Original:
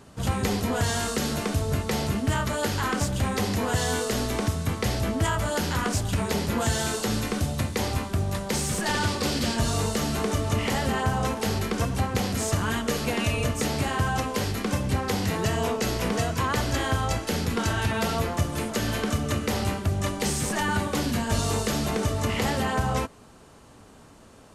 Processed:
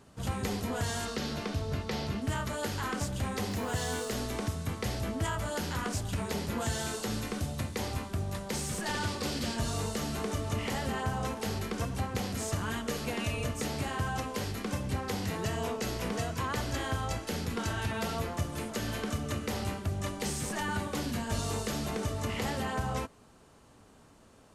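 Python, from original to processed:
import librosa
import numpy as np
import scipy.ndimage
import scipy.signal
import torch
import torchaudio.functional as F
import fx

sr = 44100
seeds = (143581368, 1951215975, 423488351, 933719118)

y = fx.high_shelf_res(x, sr, hz=6300.0, db=-7.5, q=1.5, at=(1.05, 2.22))
y = fx.quant_dither(y, sr, seeds[0], bits=8, dither='none', at=(3.51, 4.16))
y = y * librosa.db_to_amplitude(-7.5)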